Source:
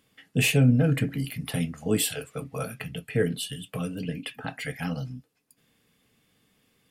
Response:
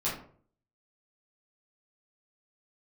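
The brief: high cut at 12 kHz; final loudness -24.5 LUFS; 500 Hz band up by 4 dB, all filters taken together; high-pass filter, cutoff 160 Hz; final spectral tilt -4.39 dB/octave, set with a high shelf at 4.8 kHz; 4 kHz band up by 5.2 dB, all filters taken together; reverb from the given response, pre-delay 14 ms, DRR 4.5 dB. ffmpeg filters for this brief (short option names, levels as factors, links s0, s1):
-filter_complex "[0:a]highpass=160,lowpass=12000,equalizer=f=500:t=o:g=4.5,equalizer=f=4000:t=o:g=5.5,highshelf=f=4800:g=3.5,asplit=2[s0][s1];[1:a]atrim=start_sample=2205,adelay=14[s2];[s1][s2]afir=irnorm=-1:irlink=0,volume=0.282[s3];[s0][s3]amix=inputs=2:normalize=0,volume=1.12"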